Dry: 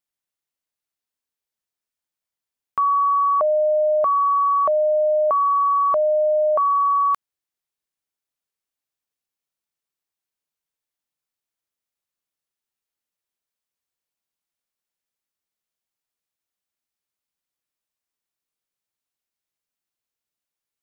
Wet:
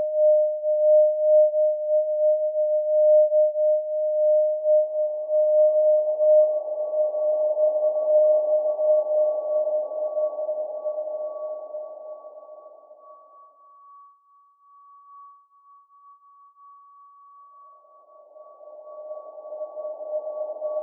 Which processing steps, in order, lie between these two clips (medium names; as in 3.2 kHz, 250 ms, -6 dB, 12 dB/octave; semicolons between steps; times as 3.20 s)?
Chebyshev band-pass 280–860 Hz, order 5; Paulstretch 22×, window 0.50 s, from 3.65 s